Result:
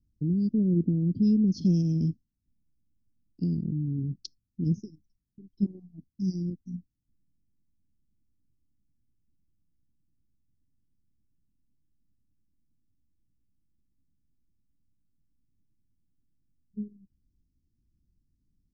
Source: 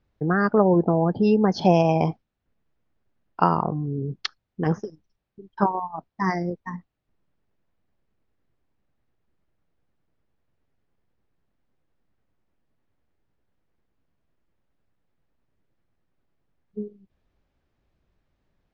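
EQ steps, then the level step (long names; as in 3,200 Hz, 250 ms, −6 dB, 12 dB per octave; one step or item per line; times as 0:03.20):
elliptic band-stop filter 280–5,200 Hz, stop band 60 dB
low-shelf EQ 360 Hz +5.5 dB
−5.0 dB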